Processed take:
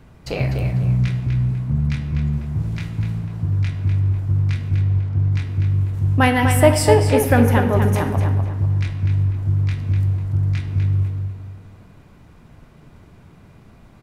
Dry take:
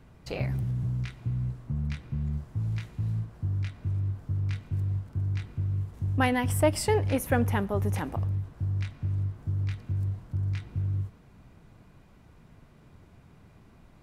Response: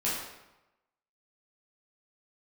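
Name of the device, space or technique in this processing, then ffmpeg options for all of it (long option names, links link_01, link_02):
keyed gated reverb: -filter_complex "[0:a]asettb=1/sr,asplit=3[link_01][link_02][link_03];[link_01]atrim=end=4.764[link_04];[link_02]atrim=start=4.76:end=5.32,asetpts=PTS-STARTPTS,afade=type=in:duration=0.004:curve=qsin,afade=type=out:start_time=0.556:duration=0.004:curve=qsin,lowpass=5500[link_05];[link_03]atrim=start=5.316[link_06];[link_04][link_05]acrossfade=duration=0.004:curve1=hsin:curve2=qsin[link_07];[link_07][link_06]acrossfade=duration=0.004:curve1=qsin:curve2=hsin,asplit=3[link_08][link_09][link_10];[1:a]atrim=start_sample=2205[link_11];[link_09][link_11]afir=irnorm=-1:irlink=0[link_12];[link_10]apad=whole_len=618569[link_13];[link_12][link_13]sidechaingate=range=-33dB:threshold=-50dB:ratio=16:detection=peak,volume=-12.5dB[link_14];[link_08][link_14]amix=inputs=2:normalize=0,asplit=2[link_15][link_16];[link_16]adelay=248,lowpass=frequency=4500:poles=1,volume=-6dB,asplit=2[link_17][link_18];[link_18]adelay=248,lowpass=frequency=4500:poles=1,volume=0.33,asplit=2[link_19][link_20];[link_20]adelay=248,lowpass=frequency=4500:poles=1,volume=0.33,asplit=2[link_21][link_22];[link_22]adelay=248,lowpass=frequency=4500:poles=1,volume=0.33[link_23];[link_15][link_17][link_19][link_21][link_23]amix=inputs=5:normalize=0,volume=7dB"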